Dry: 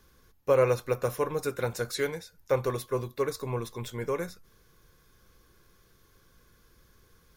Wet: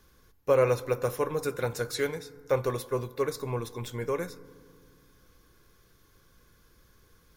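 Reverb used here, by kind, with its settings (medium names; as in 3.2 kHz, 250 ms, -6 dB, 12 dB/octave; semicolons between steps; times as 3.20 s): FDN reverb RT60 2.1 s, low-frequency decay 1.4×, high-frequency decay 0.35×, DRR 17 dB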